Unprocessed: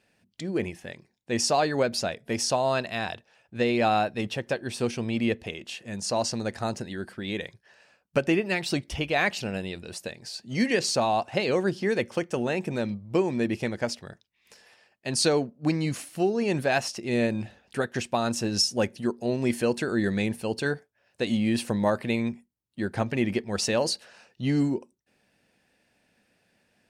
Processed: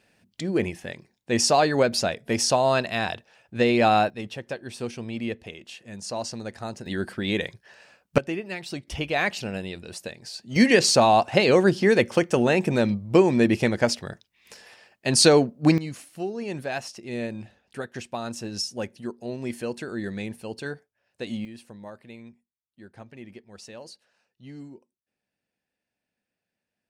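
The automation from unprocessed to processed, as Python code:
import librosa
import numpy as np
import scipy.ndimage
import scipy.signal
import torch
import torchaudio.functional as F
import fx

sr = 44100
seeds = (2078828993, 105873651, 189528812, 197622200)

y = fx.gain(x, sr, db=fx.steps((0.0, 4.0), (4.1, -4.5), (6.86, 6.0), (8.18, -6.5), (8.87, 0.0), (10.56, 7.0), (15.78, -6.0), (21.45, -17.5)))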